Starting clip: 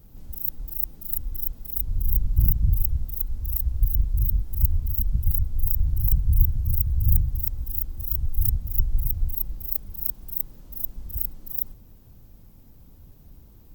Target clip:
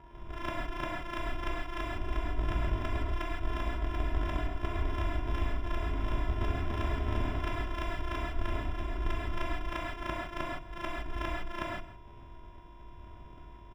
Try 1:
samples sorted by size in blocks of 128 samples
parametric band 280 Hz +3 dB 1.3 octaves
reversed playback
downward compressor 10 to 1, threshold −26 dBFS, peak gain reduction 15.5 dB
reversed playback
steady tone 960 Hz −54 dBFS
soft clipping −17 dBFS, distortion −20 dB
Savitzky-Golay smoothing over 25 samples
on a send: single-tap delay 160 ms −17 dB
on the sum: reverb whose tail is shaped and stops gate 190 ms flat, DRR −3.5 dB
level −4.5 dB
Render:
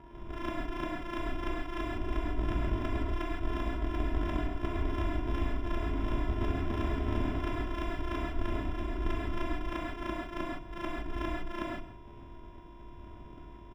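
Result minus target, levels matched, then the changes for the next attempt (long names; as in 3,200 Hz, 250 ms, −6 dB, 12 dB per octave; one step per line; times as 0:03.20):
soft clipping: distortion +8 dB; 250 Hz band +4.5 dB
change: parametric band 280 Hz −3.5 dB 1.3 octaves
change: soft clipping −10.5 dBFS, distortion −28 dB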